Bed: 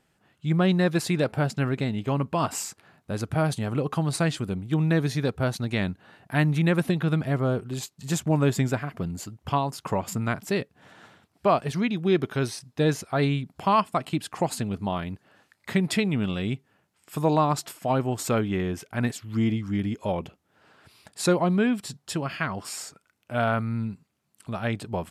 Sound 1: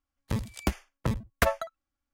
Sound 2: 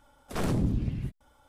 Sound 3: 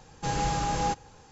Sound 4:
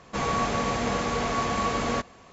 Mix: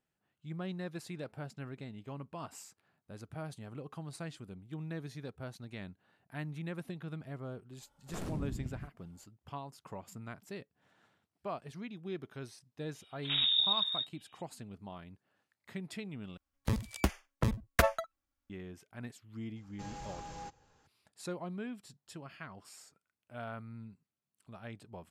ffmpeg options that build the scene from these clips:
ffmpeg -i bed.wav -i cue0.wav -i cue1.wav -i cue2.wav -filter_complex "[2:a]asplit=2[link_01][link_02];[0:a]volume=-18.5dB[link_03];[link_02]lowpass=frequency=3200:width_type=q:width=0.5098,lowpass=frequency=3200:width_type=q:width=0.6013,lowpass=frequency=3200:width_type=q:width=0.9,lowpass=frequency=3200:width_type=q:width=2.563,afreqshift=-3800[link_04];[3:a]asoftclip=type=tanh:threshold=-22.5dB[link_05];[link_03]asplit=2[link_06][link_07];[link_06]atrim=end=16.374[link_08];[1:a]atrim=end=2.13,asetpts=PTS-STARTPTS,volume=-2dB[link_09];[link_07]atrim=start=18.496[link_10];[link_01]atrim=end=1.48,asetpts=PTS-STARTPTS,volume=-12dB,afade=type=in:duration=0.004:curve=hsin,afade=type=out:start_time=1.476:duration=0.004:curve=hsin,adelay=343098S[link_11];[link_04]atrim=end=1.48,asetpts=PTS-STARTPTS,volume=-3dB,afade=type=in:duration=0.004:curve=hsin,afade=type=out:start_time=1.476:duration=0.004:curve=hsin,adelay=12940[link_12];[link_05]atrim=end=1.31,asetpts=PTS-STARTPTS,volume=-16dB,afade=type=in:duration=0.004:curve=hsin,afade=type=out:start_time=1.306:duration=0.004:curve=hsin,adelay=862596S[link_13];[link_08][link_09]acrossfade=duration=0.004:curve1=hsin:curve2=hsin[link_14];[link_14][link_10]acrossfade=duration=0.004:curve1=hsin:curve2=hsin[link_15];[link_15][link_11][link_12][link_13]amix=inputs=4:normalize=0" out.wav

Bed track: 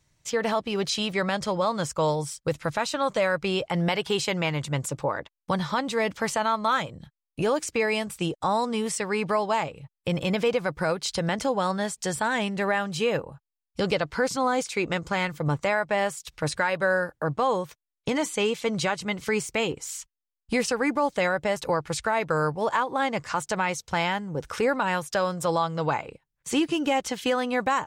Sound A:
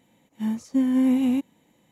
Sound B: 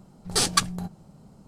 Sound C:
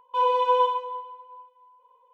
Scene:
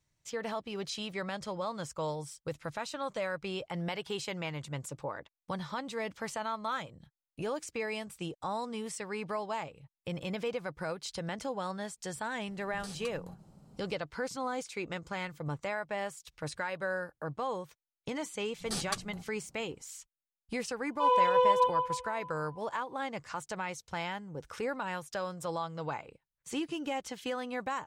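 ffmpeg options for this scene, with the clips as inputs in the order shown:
ffmpeg -i bed.wav -i cue0.wav -i cue1.wav -i cue2.wav -filter_complex "[2:a]asplit=2[link_01][link_02];[0:a]volume=-11dB[link_03];[link_01]acompressor=threshold=-38dB:ratio=6:attack=3.2:release=140:knee=1:detection=peak[link_04];[3:a]asplit=2[link_05][link_06];[link_06]adelay=151,lowpass=frequency=2000:poles=1,volume=-3dB,asplit=2[link_07][link_08];[link_08]adelay=151,lowpass=frequency=2000:poles=1,volume=0.5,asplit=2[link_09][link_10];[link_10]adelay=151,lowpass=frequency=2000:poles=1,volume=0.5,asplit=2[link_11][link_12];[link_12]adelay=151,lowpass=frequency=2000:poles=1,volume=0.5,asplit=2[link_13][link_14];[link_14]adelay=151,lowpass=frequency=2000:poles=1,volume=0.5,asplit=2[link_15][link_16];[link_16]adelay=151,lowpass=frequency=2000:poles=1,volume=0.5,asplit=2[link_17][link_18];[link_18]adelay=151,lowpass=frequency=2000:poles=1,volume=0.5[link_19];[link_05][link_07][link_09][link_11][link_13][link_15][link_17][link_19]amix=inputs=8:normalize=0[link_20];[link_04]atrim=end=1.47,asetpts=PTS-STARTPTS,volume=-6.5dB,afade=type=in:duration=0.004:curve=hsin,afade=type=out:start_time=1.466:duration=0.004:curve=hsin,adelay=12480[link_21];[link_02]atrim=end=1.47,asetpts=PTS-STARTPTS,volume=-14dB,afade=type=in:duration=0.004:curve=hsin,afade=type=out:start_time=1.466:duration=0.004:curve=hsin,adelay=18350[link_22];[link_20]atrim=end=2.13,asetpts=PTS-STARTPTS,volume=-4dB,afade=type=in:duration=0.004:curve=hsin,afade=type=out:start_time=2.126:duration=0.004:curve=hsin,adelay=20860[link_23];[link_03][link_21][link_22][link_23]amix=inputs=4:normalize=0" out.wav

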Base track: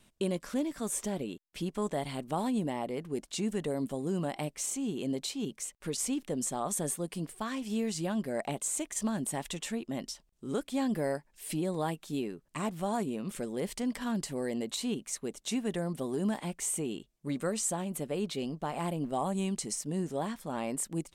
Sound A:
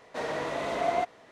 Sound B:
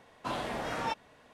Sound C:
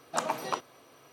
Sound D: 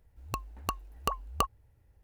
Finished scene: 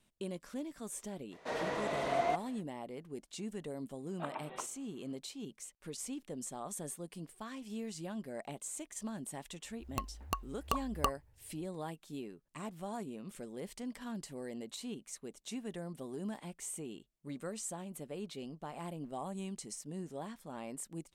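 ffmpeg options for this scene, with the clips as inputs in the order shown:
ffmpeg -i bed.wav -i cue0.wav -i cue1.wav -i cue2.wav -i cue3.wav -filter_complex "[0:a]volume=-9.5dB[link_01];[3:a]aresample=8000,aresample=44100[link_02];[1:a]atrim=end=1.31,asetpts=PTS-STARTPTS,volume=-4.5dB,afade=type=in:duration=0.02,afade=type=out:start_time=1.29:duration=0.02,adelay=1310[link_03];[link_02]atrim=end=1.12,asetpts=PTS-STARTPTS,volume=-12dB,afade=type=in:duration=0.004:curve=hsin,afade=type=out:start_time=1.116:duration=0.004:curve=hsin,adelay=4060[link_04];[4:a]atrim=end=2.03,asetpts=PTS-STARTPTS,volume=-3dB,afade=type=in:duration=0.004:curve=hsin,afade=type=out:start_time=2.026:duration=0.004:curve=hsin,adelay=9640[link_05];[link_01][link_03][link_04][link_05]amix=inputs=4:normalize=0" out.wav

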